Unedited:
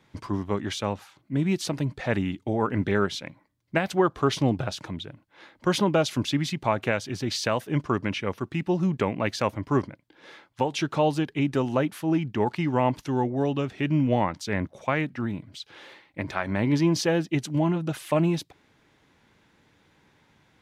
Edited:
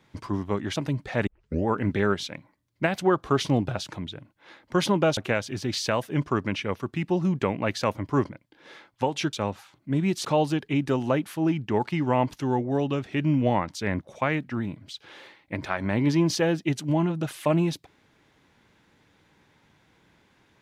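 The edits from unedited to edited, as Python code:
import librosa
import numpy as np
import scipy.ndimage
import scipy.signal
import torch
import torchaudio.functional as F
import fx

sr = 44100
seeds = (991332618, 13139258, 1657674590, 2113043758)

y = fx.edit(x, sr, fx.move(start_s=0.76, length_s=0.92, to_s=10.91),
    fx.tape_start(start_s=2.19, length_s=0.4),
    fx.cut(start_s=6.09, length_s=0.66), tone=tone)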